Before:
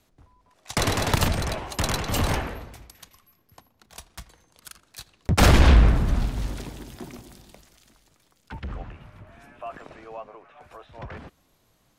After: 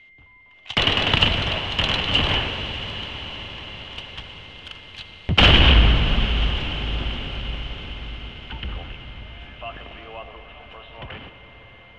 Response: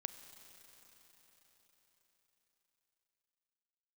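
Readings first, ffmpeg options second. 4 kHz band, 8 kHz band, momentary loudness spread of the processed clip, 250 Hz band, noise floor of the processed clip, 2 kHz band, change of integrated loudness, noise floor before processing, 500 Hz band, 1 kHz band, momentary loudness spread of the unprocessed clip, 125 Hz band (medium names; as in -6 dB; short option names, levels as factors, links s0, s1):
+13.5 dB, under -10 dB, 22 LU, +0.5 dB, -50 dBFS, +7.5 dB, +3.0 dB, -66 dBFS, +1.0 dB, +1.5 dB, 24 LU, +0.5 dB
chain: -filter_complex "[0:a]aeval=exprs='val(0)+0.00224*sin(2*PI*2100*n/s)':c=same,lowpass=f=3000:t=q:w=9.6[s0];[1:a]atrim=start_sample=2205,asetrate=23814,aresample=44100[s1];[s0][s1]afir=irnorm=-1:irlink=0"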